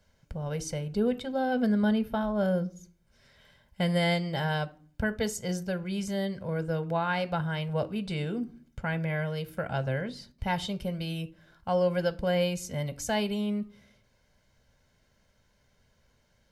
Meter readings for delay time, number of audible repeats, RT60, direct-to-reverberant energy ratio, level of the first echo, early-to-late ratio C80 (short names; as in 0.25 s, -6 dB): none, none, 0.45 s, 10.5 dB, none, 25.0 dB